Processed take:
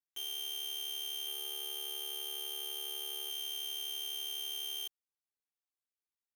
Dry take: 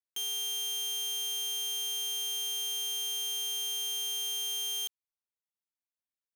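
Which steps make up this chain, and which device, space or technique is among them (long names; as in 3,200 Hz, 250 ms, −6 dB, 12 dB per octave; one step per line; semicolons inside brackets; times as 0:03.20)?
0:01.21–0:03.30: flutter between parallel walls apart 9.8 metres, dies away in 0.54 s
ring-modulated robot voice (ring modulation 36 Hz; comb filter 2.6 ms, depth 83%)
level −5 dB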